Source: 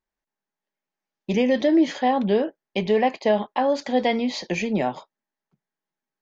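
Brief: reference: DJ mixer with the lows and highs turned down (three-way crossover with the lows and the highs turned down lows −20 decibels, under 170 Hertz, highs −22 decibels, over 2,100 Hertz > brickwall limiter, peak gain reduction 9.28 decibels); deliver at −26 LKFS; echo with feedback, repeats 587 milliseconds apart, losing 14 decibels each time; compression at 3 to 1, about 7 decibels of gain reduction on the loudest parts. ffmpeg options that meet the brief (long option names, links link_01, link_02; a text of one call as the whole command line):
ffmpeg -i in.wav -filter_complex "[0:a]acompressor=threshold=-24dB:ratio=3,acrossover=split=170 2100:gain=0.1 1 0.0794[link_01][link_02][link_03];[link_01][link_02][link_03]amix=inputs=3:normalize=0,aecho=1:1:587|1174:0.2|0.0399,volume=7dB,alimiter=limit=-16.5dB:level=0:latency=1" out.wav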